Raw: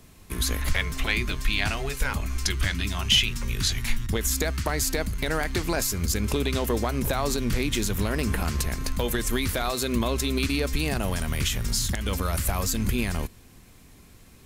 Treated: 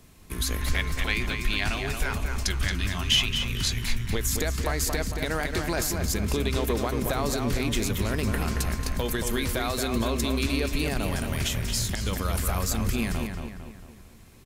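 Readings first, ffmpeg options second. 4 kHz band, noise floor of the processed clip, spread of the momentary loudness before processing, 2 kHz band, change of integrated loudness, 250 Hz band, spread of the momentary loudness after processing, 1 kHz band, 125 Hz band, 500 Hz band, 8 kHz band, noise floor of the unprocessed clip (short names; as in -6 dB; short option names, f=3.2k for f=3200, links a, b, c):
-1.5 dB, -48 dBFS, 3 LU, -1.0 dB, -1.0 dB, -0.5 dB, 3 LU, -0.5 dB, -0.5 dB, -0.5 dB, -1.5 dB, -51 dBFS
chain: -filter_complex "[0:a]asplit=2[a][b];[b]adelay=226,lowpass=f=3.5k:p=1,volume=-5dB,asplit=2[c][d];[d]adelay=226,lowpass=f=3.5k:p=1,volume=0.48,asplit=2[e][f];[f]adelay=226,lowpass=f=3.5k:p=1,volume=0.48,asplit=2[g][h];[h]adelay=226,lowpass=f=3.5k:p=1,volume=0.48,asplit=2[i][j];[j]adelay=226,lowpass=f=3.5k:p=1,volume=0.48,asplit=2[k][l];[l]adelay=226,lowpass=f=3.5k:p=1,volume=0.48[m];[c][e][g][i][k][m]amix=inputs=6:normalize=0[n];[a][n]amix=inputs=2:normalize=0,volume=-2dB"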